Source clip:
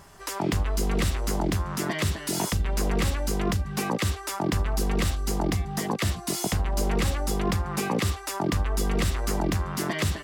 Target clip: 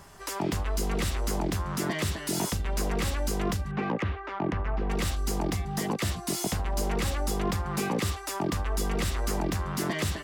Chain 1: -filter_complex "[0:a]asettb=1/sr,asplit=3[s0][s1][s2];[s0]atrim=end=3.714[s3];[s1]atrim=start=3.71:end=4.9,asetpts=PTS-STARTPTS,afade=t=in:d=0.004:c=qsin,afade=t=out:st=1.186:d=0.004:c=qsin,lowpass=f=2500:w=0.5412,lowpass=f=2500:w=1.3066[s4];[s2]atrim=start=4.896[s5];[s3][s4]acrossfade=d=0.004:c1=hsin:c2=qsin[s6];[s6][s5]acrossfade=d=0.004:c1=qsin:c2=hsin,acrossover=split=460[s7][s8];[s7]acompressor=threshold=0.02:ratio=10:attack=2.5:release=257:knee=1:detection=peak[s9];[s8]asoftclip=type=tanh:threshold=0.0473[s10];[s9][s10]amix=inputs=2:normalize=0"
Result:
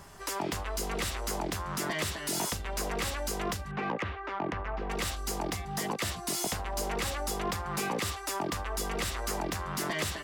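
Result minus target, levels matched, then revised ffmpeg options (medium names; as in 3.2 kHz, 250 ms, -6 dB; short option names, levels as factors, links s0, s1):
compression: peak gain reduction +8.5 dB
-filter_complex "[0:a]asettb=1/sr,asplit=3[s0][s1][s2];[s0]atrim=end=3.714[s3];[s1]atrim=start=3.71:end=4.9,asetpts=PTS-STARTPTS,afade=t=in:d=0.004:c=qsin,afade=t=out:st=1.186:d=0.004:c=qsin,lowpass=f=2500:w=0.5412,lowpass=f=2500:w=1.3066[s4];[s2]atrim=start=4.896[s5];[s3][s4]acrossfade=d=0.004:c1=hsin:c2=qsin[s6];[s6][s5]acrossfade=d=0.004:c1=qsin:c2=hsin,acrossover=split=460[s7][s8];[s7]acompressor=threshold=0.0596:ratio=10:attack=2.5:release=257:knee=1:detection=peak[s9];[s8]asoftclip=type=tanh:threshold=0.0473[s10];[s9][s10]amix=inputs=2:normalize=0"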